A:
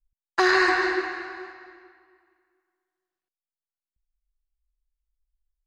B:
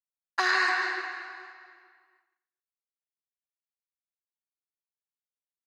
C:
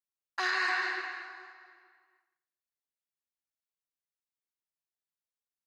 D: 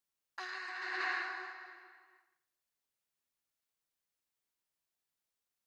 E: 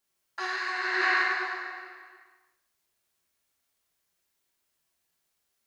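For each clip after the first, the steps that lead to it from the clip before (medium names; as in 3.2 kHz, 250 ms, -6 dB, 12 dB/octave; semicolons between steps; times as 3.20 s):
expander -59 dBFS; high-pass 770 Hz 12 dB/octave; trim -3 dB
dynamic bell 2.8 kHz, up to +4 dB, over -43 dBFS, Q 1.3; peak limiter -16 dBFS, peak gain reduction 5.5 dB; trim -4 dB
compressor with a negative ratio -39 dBFS, ratio -1; trim -1 dB
gated-style reverb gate 360 ms falling, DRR -4.5 dB; trim +5.5 dB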